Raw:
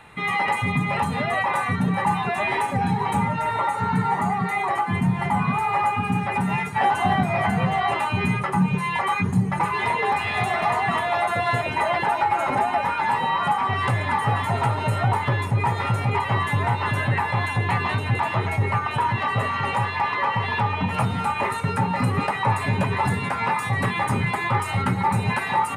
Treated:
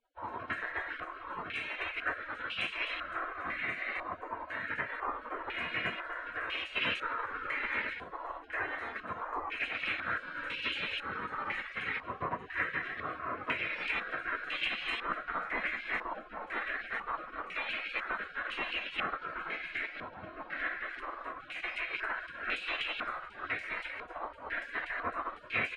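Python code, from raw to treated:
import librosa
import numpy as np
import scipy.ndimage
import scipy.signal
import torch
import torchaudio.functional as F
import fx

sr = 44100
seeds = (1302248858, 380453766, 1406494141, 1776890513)

y = fx.hum_notches(x, sr, base_hz=60, count=5)
y = fx.spec_gate(y, sr, threshold_db=-25, keep='weak')
y = fx.filter_held_lowpass(y, sr, hz=2.0, low_hz=980.0, high_hz=2800.0)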